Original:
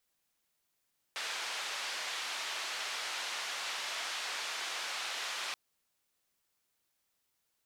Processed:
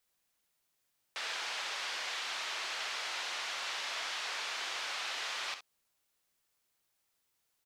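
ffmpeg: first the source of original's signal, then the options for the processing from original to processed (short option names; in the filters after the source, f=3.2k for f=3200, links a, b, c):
-f lavfi -i "anoisesrc=c=white:d=4.38:r=44100:seed=1,highpass=f=760,lowpass=f=4300,volume=-26.1dB"
-filter_complex "[0:a]acrossover=split=6900[a][b];[b]acompressor=threshold=-58dB:ratio=4:attack=1:release=60[c];[a][c]amix=inputs=2:normalize=0,equalizer=f=230:w=1.5:g=-2,aecho=1:1:56|67:0.251|0.237"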